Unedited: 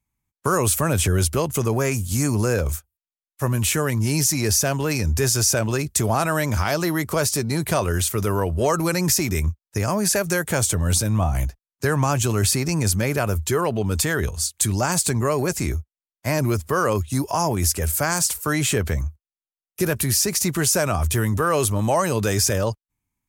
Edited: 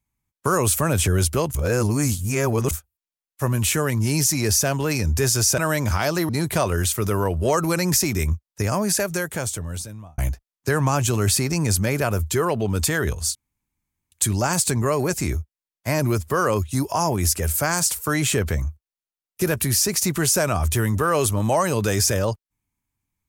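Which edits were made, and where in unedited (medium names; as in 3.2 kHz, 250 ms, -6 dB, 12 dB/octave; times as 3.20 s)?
1.55–2.71 s: reverse
5.58–6.24 s: delete
6.95–7.45 s: delete
9.91–11.34 s: fade out
14.51 s: insert room tone 0.77 s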